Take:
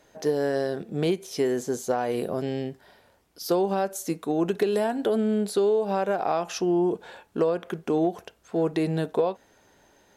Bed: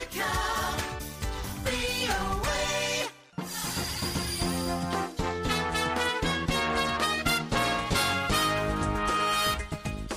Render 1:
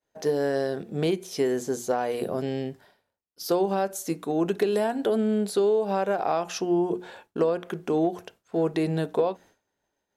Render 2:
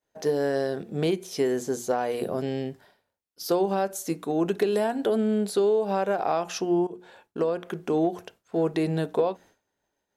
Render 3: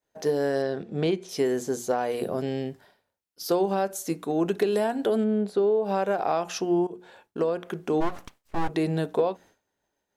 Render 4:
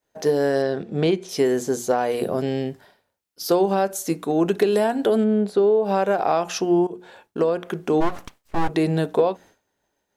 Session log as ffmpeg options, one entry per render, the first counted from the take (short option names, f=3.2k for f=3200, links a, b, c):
-af "bandreject=f=60:t=h:w=6,bandreject=f=120:t=h:w=6,bandreject=f=180:t=h:w=6,bandreject=f=240:t=h:w=6,bandreject=f=300:t=h:w=6,bandreject=f=360:t=h:w=6,agate=range=-33dB:threshold=-46dB:ratio=3:detection=peak"
-filter_complex "[0:a]asplit=2[a][b];[a]atrim=end=6.87,asetpts=PTS-STARTPTS,afade=t=out:st=6.866:d=0.004:c=hsin:silence=0.188365[c];[b]atrim=start=6.87,asetpts=PTS-STARTPTS,afade=t=in:d=1.12:c=qsin:silence=0.188365[d];[c][d]concat=n=2:v=0:a=1"
-filter_complex "[0:a]asettb=1/sr,asplit=3[a][b][c];[a]atrim=end=0.624[d];[b]atrim=start=0.62:end=1.29,asetpts=PTS-STARTPTS,afade=t=in:d=0.004:c=qsin,afade=t=out:st=0.666:d=0.004:c=qsin,lowpass=5.3k[e];[c]atrim=start=1.286[f];[d][e]acrossfade=d=0.004:c1=hsin:c2=qsin[g];[g][f]acrossfade=d=0.004:c1=qsin:c2=hsin,asplit=3[h][i][j];[h]afade=t=out:st=5.23:d=0.02[k];[i]lowpass=f=1.3k:p=1,afade=t=in:st=5.23:d=0.02,afade=t=out:st=5.84:d=0.02[l];[j]afade=t=in:st=5.84:d=0.02[m];[k][l][m]amix=inputs=3:normalize=0,asplit=3[n][o][p];[n]afade=t=out:st=8:d=0.02[q];[o]aeval=exprs='abs(val(0))':c=same,afade=t=in:st=8:d=0.02,afade=t=out:st=8.68:d=0.02[r];[p]afade=t=in:st=8.68:d=0.02[s];[q][r][s]amix=inputs=3:normalize=0"
-af "volume=5dB"